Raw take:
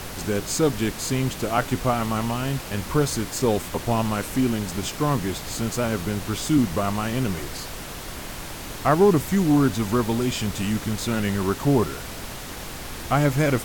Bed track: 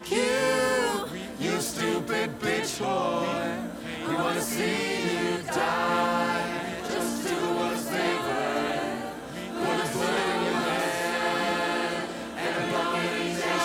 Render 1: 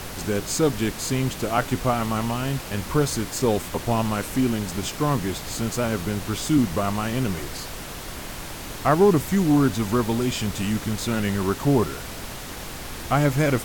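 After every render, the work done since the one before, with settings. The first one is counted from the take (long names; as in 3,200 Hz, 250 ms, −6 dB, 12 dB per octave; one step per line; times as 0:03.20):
no processing that can be heard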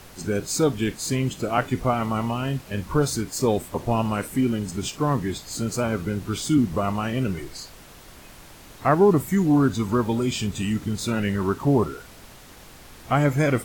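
noise reduction from a noise print 11 dB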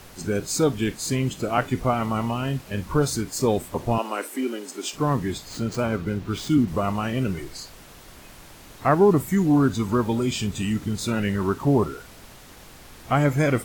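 0:03.98–0:04.93: Butterworth high-pass 280 Hz
0:05.48–0:06.68: running median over 5 samples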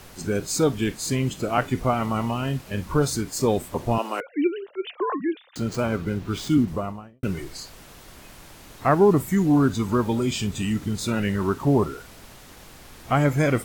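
0:04.20–0:05.56: three sine waves on the formant tracks
0:06.54–0:07.23: fade out and dull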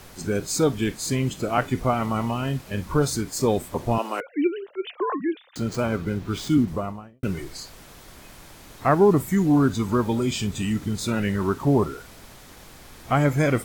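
notch filter 2,800 Hz, Q 26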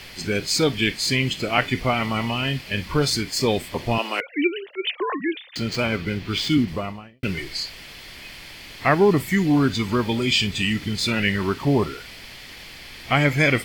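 flat-topped bell 3,000 Hz +13 dB
notch filter 3,800 Hz, Q 11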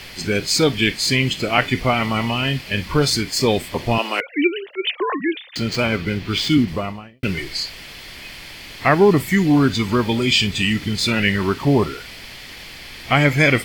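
level +3.5 dB
brickwall limiter −2 dBFS, peak gain reduction 1 dB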